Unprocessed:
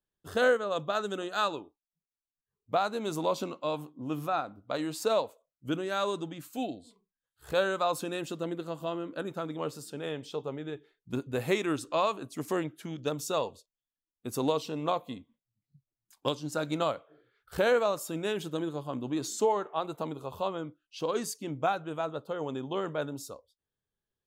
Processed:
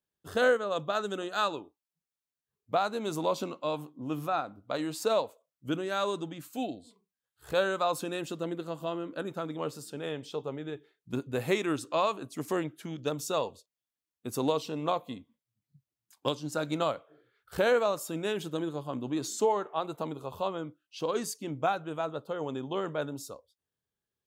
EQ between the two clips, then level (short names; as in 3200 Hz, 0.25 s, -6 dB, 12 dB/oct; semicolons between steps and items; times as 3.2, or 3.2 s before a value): HPF 60 Hz; 0.0 dB